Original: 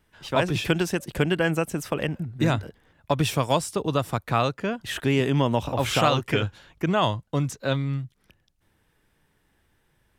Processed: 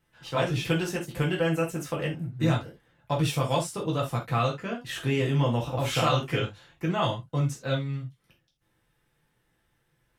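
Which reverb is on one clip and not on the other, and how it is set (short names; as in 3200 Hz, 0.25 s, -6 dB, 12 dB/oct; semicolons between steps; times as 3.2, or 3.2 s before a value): non-linear reverb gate 0.1 s falling, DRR -3 dB; gain -8.5 dB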